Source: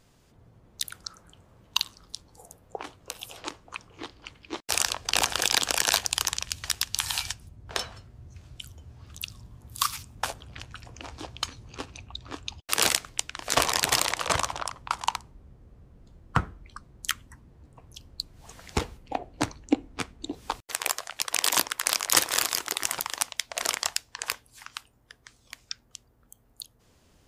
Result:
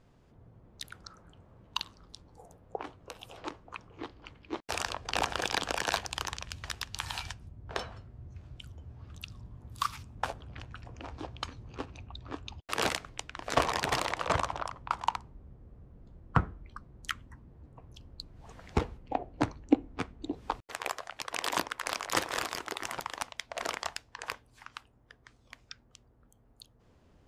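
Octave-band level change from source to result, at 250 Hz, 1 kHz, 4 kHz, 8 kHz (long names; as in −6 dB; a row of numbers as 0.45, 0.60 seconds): 0.0, −2.0, −9.5, −14.5 decibels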